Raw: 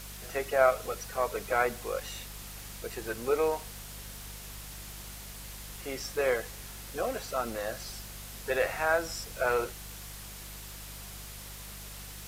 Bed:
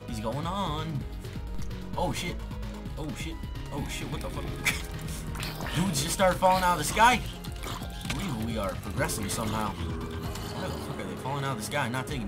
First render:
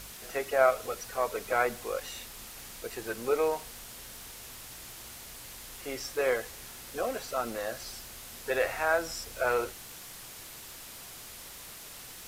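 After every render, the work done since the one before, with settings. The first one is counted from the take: de-hum 50 Hz, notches 4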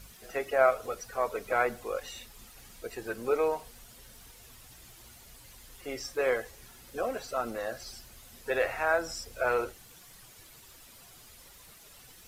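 noise reduction 10 dB, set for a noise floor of -46 dBFS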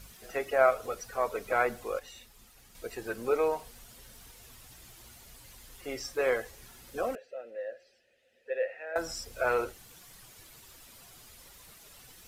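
1.99–2.75 s: gain -6 dB; 7.15–8.96 s: vowel filter e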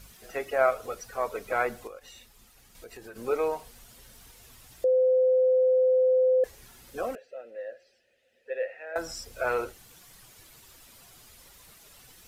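1.87–3.16 s: compression 4:1, threshold -42 dBFS; 4.84–6.44 s: bleep 513 Hz -18.5 dBFS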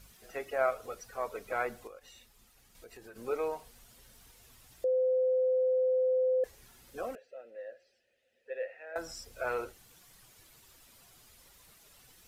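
trim -6 dB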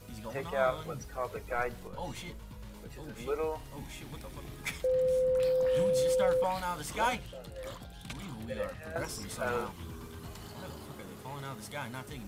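add bed -10.5 dB

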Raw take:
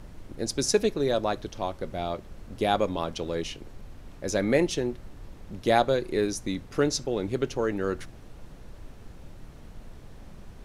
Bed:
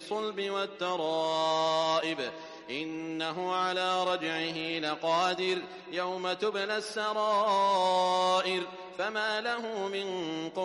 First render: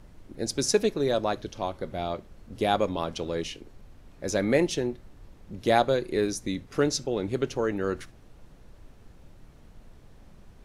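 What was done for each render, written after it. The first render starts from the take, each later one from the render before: noise print and reduce 6 dB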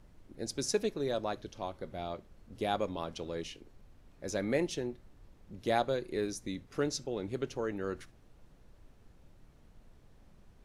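trim -8 dB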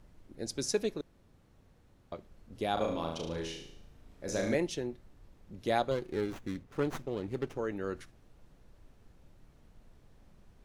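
1.01–2.12 s: room tone; 2.73–4.55 s: flutter echo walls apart 6.3 m, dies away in 0.64 s; 5.91–7.58 s: sliding maximum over 9 samples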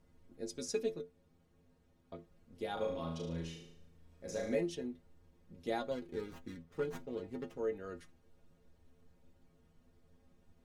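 inharmonic resonator 81 Hz, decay 0.25 s, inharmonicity 0.008; small resonant body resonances 220/470 Hz, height 6 dB, ringing for 35 ms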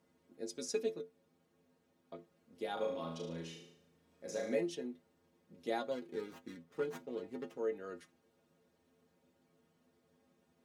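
high-pass 210 Hz 12 dB/octave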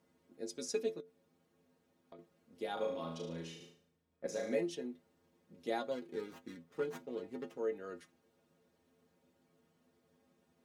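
1.00–2.19 s: compression, threshold -50 dBFS; 3.60–4.27 s: three bands expanded up and down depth 100%

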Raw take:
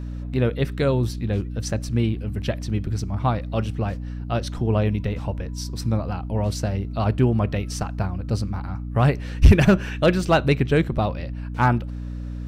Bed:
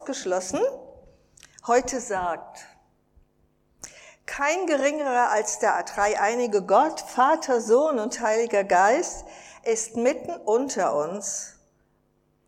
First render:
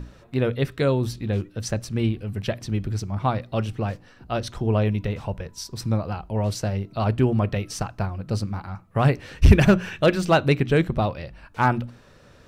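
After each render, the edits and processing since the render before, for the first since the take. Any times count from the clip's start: hum notches 60/120/180/240/300 Hz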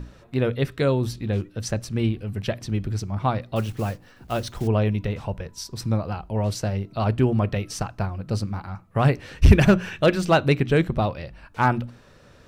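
3.56–4.69 s: block-companded coder 5-bit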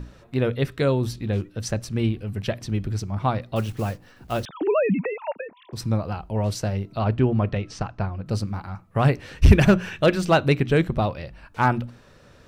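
4.45–5.73 s: formants replaced by sine waves; 6.99–8.26 s: distance through air 120 m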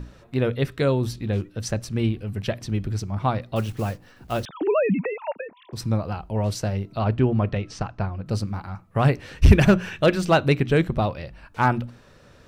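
no audible change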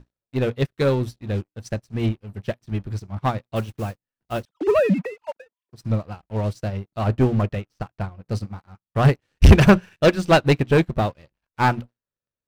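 waveshaping leveller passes 3; upward expansion 2.5:1, over -31 dBFS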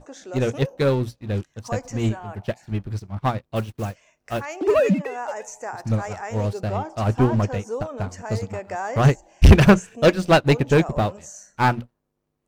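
add bed -10.5 dB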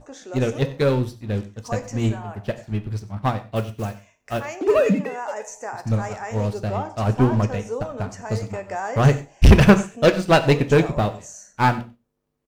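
delay 93 ms -19.5 dB; gated-style reverb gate 160 ms falling, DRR 9.5 dB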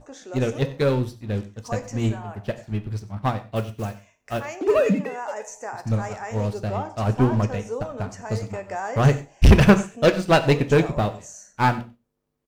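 trim -1.5 dB

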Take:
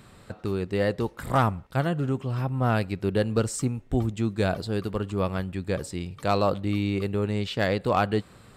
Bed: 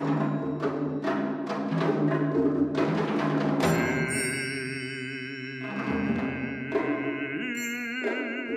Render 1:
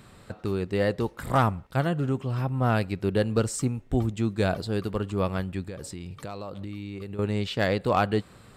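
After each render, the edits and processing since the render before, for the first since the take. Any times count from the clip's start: 5.61–7.19 s: compression 12:1, threshold -32 dBFS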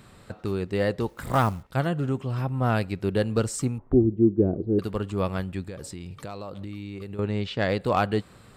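1.09–1.63 s: companded quantiser 6-bit; 3.78–4.79 s: touch-sensitive low-pass 350–1300 Hz down, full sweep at -27.5 dBFS; 7.20–7.69 s: distance through air 84 m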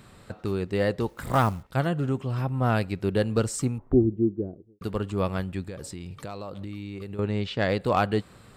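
3.82–4.81 s: studio fade out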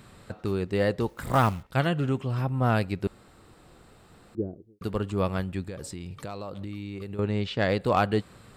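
1.43–2.28 s: dynamic bell 2.7 kHz, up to +7 dB, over -48 dBFS, Q 1; 3.07–4.35 s: room tone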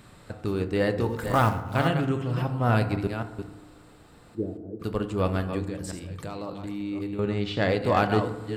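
chunks repeated in reverse 269 ms, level -8 dB; FDN reverb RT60 1.1 s, low-frequency decay 1.2×, high-frequency decay 0.4×, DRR 8 dB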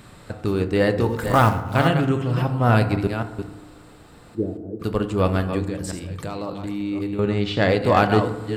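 trim +5.5 dB

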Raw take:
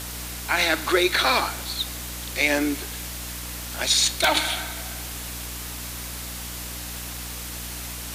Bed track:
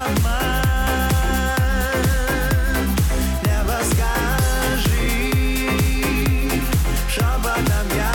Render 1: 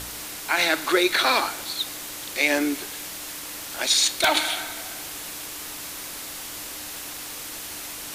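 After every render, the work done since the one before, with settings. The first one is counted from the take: de-hum 60 Hz, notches 4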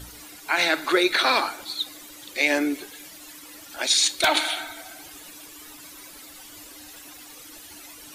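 noise reduction 13 dB, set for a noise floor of -36 dBFS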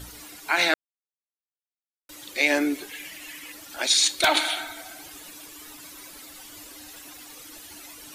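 0.74–2.09 s: mute; 2.89–3.52 s: high-order bell 2.3 kHz +10 dB 1 oct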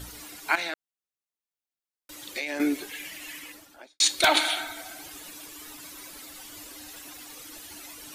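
0.55–2.60 s: compression 16:1, threshold -27 dBFS; 3.35–4.00 s: studio fade out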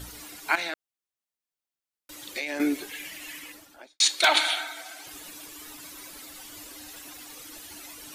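3.96–5.07 s: frequency weighting A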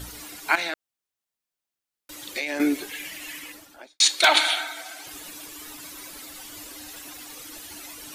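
trim +3 dB

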